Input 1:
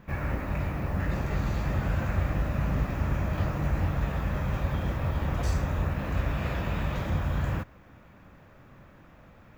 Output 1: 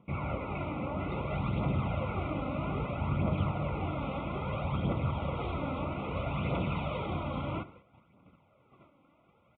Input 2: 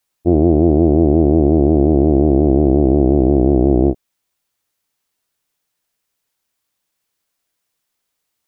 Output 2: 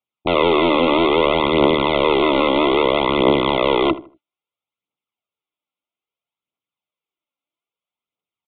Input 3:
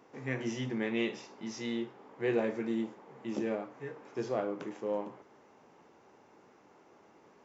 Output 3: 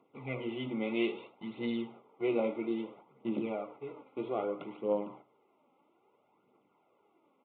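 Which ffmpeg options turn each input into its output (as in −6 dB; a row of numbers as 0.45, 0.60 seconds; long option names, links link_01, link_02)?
-filter_complex "[0:a]agate=range=-10dB:threshold=-50dB:ratio=16:detection=peak,highpass=130,aresample=16000,aeval=exprs='(mod(2.51*val(0)+1,2)-1)/2.51':channel_layout=same,aresample=44100,aphaser=in_gain=1:out_gain=1:delay=3.9:decay=0.46:speed=0.61:type=triangular,asuperstop=centerf=1700:order=20:qfactor=3,asplit=2[link_01][link_02];[link_02]adelay=78,lowpass=frequency=1700:poles=1,volume=-15.5dB,asplit=2[link_03][link_04];[link_04]adelay=78,lowpass=frequency=1700:poles=1,volume=0.3,asplit=2[link_05][link_06];[link_06]adelay=78,lowpass=frequency=1700:poles=1,volume=0.3[link_07];[link_01][link_03][link_05][link_07]amix=inputs=4:normalize=0,aresample=8000,aresample=44100,volume=-1dB"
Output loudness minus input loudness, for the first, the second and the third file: −4.0, −3.0, 0.0 LU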